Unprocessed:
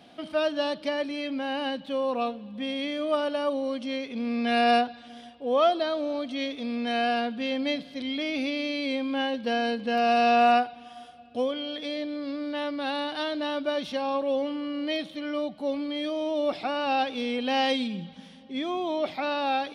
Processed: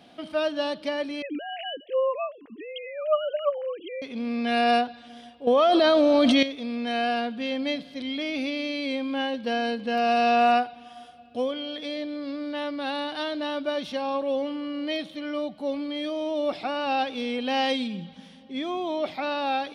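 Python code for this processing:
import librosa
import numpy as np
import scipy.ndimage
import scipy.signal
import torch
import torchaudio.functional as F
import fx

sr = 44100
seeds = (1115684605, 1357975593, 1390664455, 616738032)

y = fx.sine_speech(x, sr, at=(1.22, 4.02))
y = fx.env_flatten(y, sr, amount_pct=100, at=(5.47, 6.43))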